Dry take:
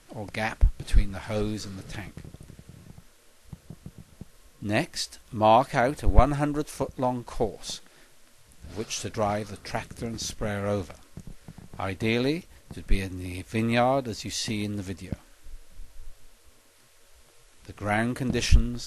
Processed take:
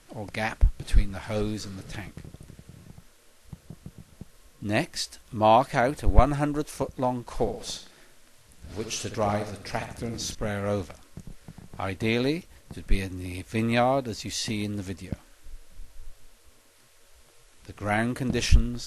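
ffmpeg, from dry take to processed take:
ffmpeg -i in.wav -filter_complex "[0:a]asettb=1/sr,asplit=3[link_01][link_02][link_03];[link_01]atrim=end=7.254[link_04];[link_02]atrim=start=7.25:end=10.35,asetpts=PTS-STARTPTS,afade=type=in:duration=0.004:curve=qsin,afade=type=out:start_time=3.096:duration=0.004:curve=qsin,asplit=2[link_05][link_06];[link_06]adelay=68,lowpass=frequency=4600:poles=1,volume=-8dB,asplit=2[link_07][link_08];[link_08]adelay=68,lowpass=frequency=4600:poles=1,volume=0.4,asplit=2[link_09][link_10];[link_10]adelay=68,lowpass=frequency=4600:poles=1,volume=0.4,asplit=2[link_11][link_12];[link_12]adelay=68,lowpass=frequency=4600:poles=1,volume=0.4,asplit=2[link_13][link_14];[link_14]adelay=68,lowpass=frequency=4600:poles=1,volume=0.4[link_15];[link_05][link_07][link_09][link_11][link_13][link_15]amix=inputs=6:normalize=0,atrim=end_sample=136710[link_16];[link_03]atrim=start=10.346[link_17];[link_04][link_16]acrossfade=duration=0.004:curve1=hsin:curve2=qsin[link_18];[link_18][link_17]acrossfade=duration=0.004:curve1=qsin:curve2=hsin" out.wav

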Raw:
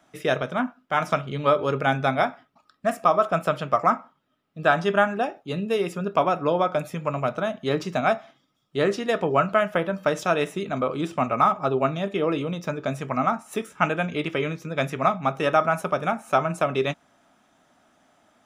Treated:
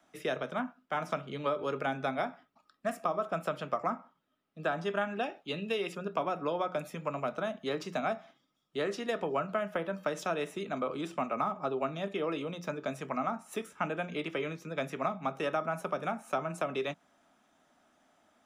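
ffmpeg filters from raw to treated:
ffmpeg -i in.wav -filter_complex "[0:a]asettb=1/sr,asplit=3[link_01][link_02][link_03];[link_01]atrim=end=5.014[link_04];[link_02]atrim=start=5.01:end=5.95,asetpts=PTS-STARTPTS,afade=type=in:duration=0.004:curve=qsin,afade=type=out:start_time=0.936:duration=0.004:curve=qsin,equalizer=frequency=3000:width_type=o:width=1.5:gain=9.5[link_05];[link_03]atrim=start=5.946[link_06];[link_04][link_05]acrossfade=duration=0.004:curve1=hsin:curve2=qsin[link_07];[link_07][link_06]acrossfade=duration=0.004:curve1=qsin:curve2=hsin,equalizer=frequency=120:width=5.6:gain=-13,acrossover=split=140|440|1000[link_08][link_09][link_10][link_11];[link_08]acompressor=threshold=-50dB:ratio=4[link_12];[link_09]acompressor=threshold=-30dB:ratio=4[link_13];[link_10]acompressor=threshold=-28dB:ratio=4[link_14];[link_11]acompressor=threshold=-30dB:ratio=4[link_15];[link_12][link_13][link_14][link_15]amix=inputs=4:normalize=0,bandreject=frequency=60:width_type=h:width=6,bandreject=frequency=120:width_type=h:width=6,bandreject=frequency=180:width_type=h:width=6,volume=-6.5dB" out.wav

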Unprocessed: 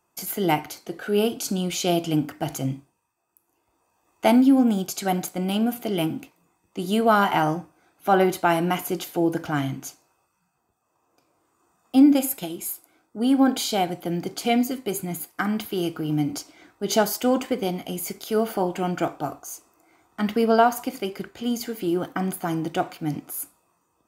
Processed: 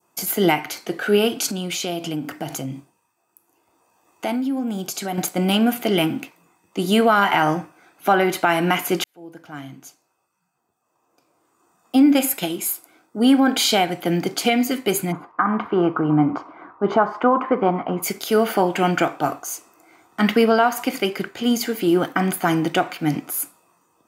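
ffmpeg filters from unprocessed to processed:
ffmpeg -i in.wav -filter_complex "[0:a]asettb=1/sr,asplit=3[link_01][link_02][link_03];[link_01]atrim=end=1.464[link_04];[link_02]atrim=start=1.46:end=5.18,asetpts=PTS-STARTPTS,afade=type=in:duration=0.004:curve=qsin,afade=type=out:start_time=3.716:duration=0.004:curve=qsin,acompressor=threshold=-32dB:ratio=3:attack=3.2:release=140:knee=1:detection=peak[link_05];[link_03]atrim=start=5.176[link_06];[link_04][link_05]acrossfade=duration=0.004:curve1=hsin:curve2=qsin[link_07];[link_07][link_06]acrossfade=duration=0.004:curve1=qsin:curve2=hsin,asplit=3[link_08][link_09][link_10];[link_08]afade=type=out:start_time=15.11:duration=0.02[link_11];[link_09]lowpass=frequency=1100:width_type=q:width=5,afade=type=in:start_time=15.11:duration=0.02,afade=type=out:start_time=18.02:duration=0.02[link_12];[link_10]afade=type=in:start_time=18.02:duration=0.02[link_13];[link_11][link_12][link_13]amix=inputs=3:normalize=0,asplit=2[link_14][link_15];[link_14]atrim=end=9.04,asetpts=PTS-STARTPTS,afade=type=out:start_time=9.036:duration=0.004:curve=hsin[link_16];[link_15]atrim=start=9.04,asetpts=PTS-STARTPTS,afade=type=in:duration=3.56[link_17];[link_16][link_17]concat=n=2:v=0:a=1,highpass=130,adynamicequalizer=threshold=0.01:dfrequency=2000:dqfactor=0.85:tfrequency=2000:tqfactor=0.85:attack=5:release=100:ratio=0.375:range=4:mode=boostabove:tftype=bell,alimiter=limit=-13.5dB:level=0:latency=1:release=261,volume=6.5dB" out.wav

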